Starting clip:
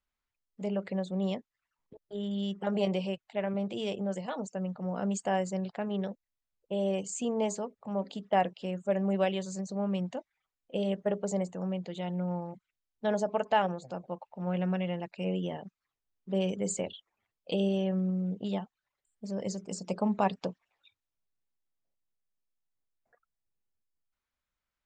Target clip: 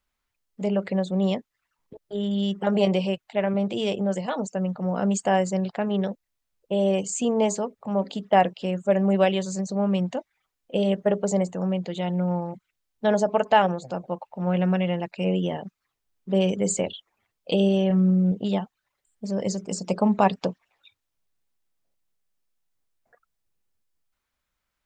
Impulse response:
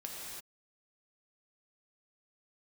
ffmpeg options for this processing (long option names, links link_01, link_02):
-filter_complex "[0:a]asettb=1/sr,asplit=3[link_01][link_02][link_03];[link_01]atrim=end=17.874[link_04];[link_02]atrim=start=17.87:end=18.32,asetpts=PTS-STARTPTS,afade=type=in:duration=0.004:curve=qsin,afade=type=out:start_time=0.446:duration=0.004:curve=qsin,asplit=2[link_05][link_06];[link_06]adelay=33,volume=-6.5dB[link_07];[link_05][link_07]amix=inputs=2:normalize=0,atrim=end_sample=19845[link_08];[link_03]atrim=start=18.316[link_09];[link_04][link_08]acrossfade=duration=0.004:curve1=hsin:curve2=qsin[link_10];[link_10][link_09]acrossfade=duration=0.004:curve1=qsin:curve2=hsin,volume=8dB"